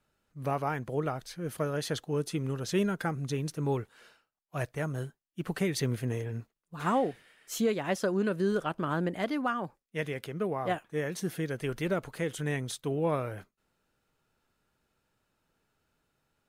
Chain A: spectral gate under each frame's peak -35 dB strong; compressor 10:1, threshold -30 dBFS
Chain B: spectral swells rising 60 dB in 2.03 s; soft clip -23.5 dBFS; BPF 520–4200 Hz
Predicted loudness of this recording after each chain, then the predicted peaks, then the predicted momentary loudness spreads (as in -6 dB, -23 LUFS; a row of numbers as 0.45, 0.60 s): -36.5, -34.5 LUFS; -20.0, -19.5 dBFS; 6, 7 LU